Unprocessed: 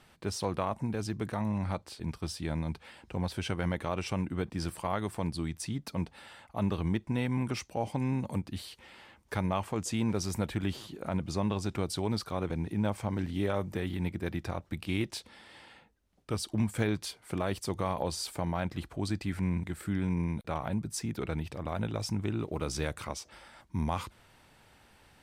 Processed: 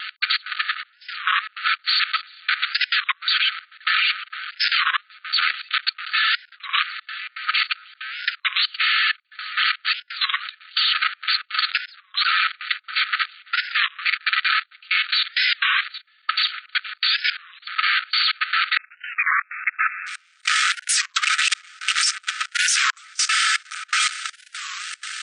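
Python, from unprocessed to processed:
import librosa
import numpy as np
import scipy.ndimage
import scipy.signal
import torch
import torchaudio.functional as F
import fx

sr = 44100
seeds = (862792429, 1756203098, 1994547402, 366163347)

y = fx.lower_of_two(x, sr, delay_ms=4.6)
y = fx.over_compress(y, sr, threshold_db=-42.0, ratio=-0.5)
y = fx.fuzz(y, sr, gain_db=52.0, gate_db=-59.0)
y = fx.echo_feedback(y, sr, ms=778, feedback_pct=45, wet_db=-20.0)
y = fx.step_gate(y, sr, bpm=163, pattern='x.xx.xxxx...xxx', floor_db=-24.0, edge_ms=4.5)
y = fx.brickwall_bandpass(y, sr, low_hz=1200.0, high_hz=fx.steps((0.0, 4600.0), (18.76, 2700.0), (20.06, 9200.0)))
y = fx.level_steps(y, sr, step_db=13)
y = fx.record_warp(y, sr, rpm=33.33, depth_cents=250.0)
y = y * librosa.db_to_amplitude(7.0)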